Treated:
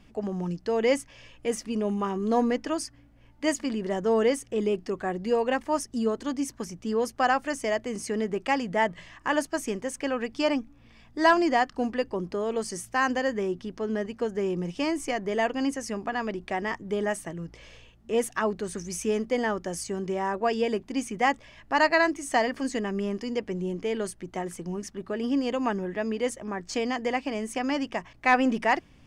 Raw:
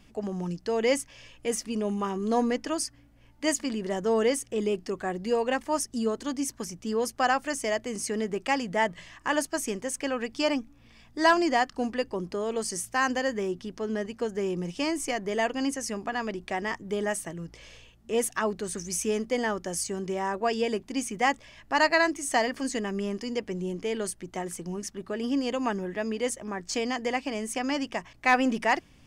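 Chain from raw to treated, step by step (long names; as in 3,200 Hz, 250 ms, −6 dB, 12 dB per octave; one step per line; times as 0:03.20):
high-shelf EQ 4,200 Hz −8 dB
level +1.5 dB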